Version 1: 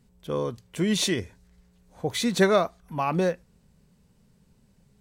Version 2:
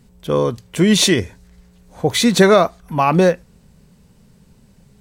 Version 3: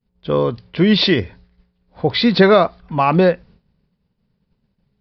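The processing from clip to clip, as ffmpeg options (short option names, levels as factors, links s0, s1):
-af "alimiter=level_in=3.98:limit=0.891:release=50:level=0:latency=1,volume=0.891"
-af "aresample=11025,aresample=44100,agate=range=0.0224:threshold=0.0126:ratio=3:detection=peak"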